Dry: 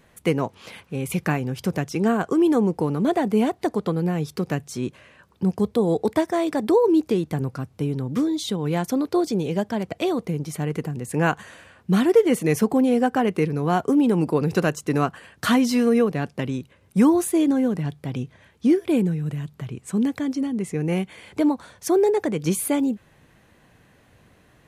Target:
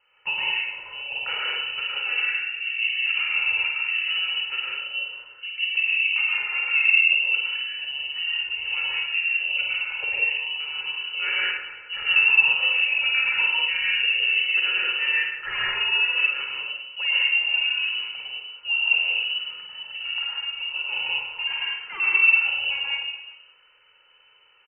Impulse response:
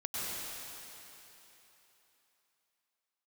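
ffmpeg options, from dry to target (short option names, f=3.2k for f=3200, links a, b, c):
-filter_complex "[0:a]highpass=73,aecho=1:1:2.3:0.76,asettb=1/sr,asplit=3[a][b][c];[a]atrim=end=2.204[d];[b]atrim=start=2.2:end=2.62,asetpts=PTS-STARTPTS,afade=t=in:d=0.004:c=qsin,afade=t=out:st=0.416:d=0.004:c=qsin,acompressor=threshold=-30dB:ratio=3[e];[c]atrim=start=2.616[f];[d][e]acrossfade=d=0.004:c1=hsin:c2=qsin[g];[g][f]acrossfade=d=0.004:c1=qsin:c2=hsin,asettb=1/sr,asplit=3[h][i][j];[h]atrim=end=21.474[k];[i]atrim=start=21.47:end=22,asetpts=PTS-STARTPTS,afade=t=in:d=0.004:c=qsin,afade=t=out:st=0.526:d=0.004:c=qsin,aeval=exprs='0.0891*(abs(mod(val(0)/0.0891+3,4)-2)-1)':c=same[l];[j]atrim=start=21.996[m];[k][l]acrossfade=d=0.004:c1=hsin:c2=qsin[n];[n][m]acrossfade=d=0.004:c1=qsin:c2=hsin,aecho=1:1:50|112.5|190.6|288.3|410.4:0.631|0.398|0.251|0.158|0.1[o];[1:a]atrim=start_sample=2205,afade=t=out:st=0.27:d=0.01,atrim=end_sample=12348[p];[o][p]afir=irnorm=-1:irlink=0,lowpass=f=2.6k:t=q:w=0.5098,lowpass=f=2.6k:t=q:w=0.6013,lowpass=f=2.6k:t=q:w=0.9,lowpass=f=2.6k:t=q:w=2.563,afreqshift=-3100,volume=-6.5dB"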